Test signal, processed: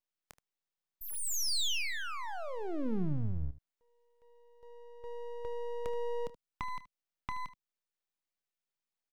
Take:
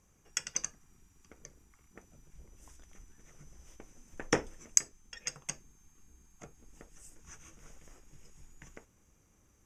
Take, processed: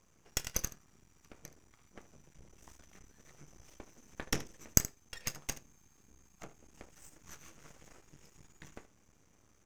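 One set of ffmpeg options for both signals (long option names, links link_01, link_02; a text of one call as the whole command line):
ffmpeg -i in.wav -filter_complex "[0:a]highpass=frequency=100:poles=1,equalizer=frequency=13000:width=0.85:gain=-12.5,acrossover=split=250|3000[link_01][link_02][link_03];[link_02]acompressor=threshold=-41dB:ratio=10[link_04];[link_01][link_04][link_03]amix=inputs=3:normalize=0,aeval=exprs='max(val(0),0)':channel_layout=same,asplit=2[link_05][link_06];[link_06]aecho=0:1:27|76:0.158|0.15[link_07];[link_05][link_07]amix=inputs=2:normalize=0,volume=6dB" out.wav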